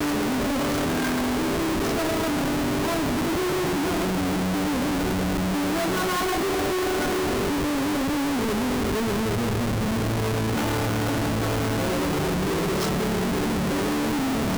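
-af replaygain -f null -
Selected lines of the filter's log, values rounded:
track_gain = +9.0 dB
track_peak = 0.065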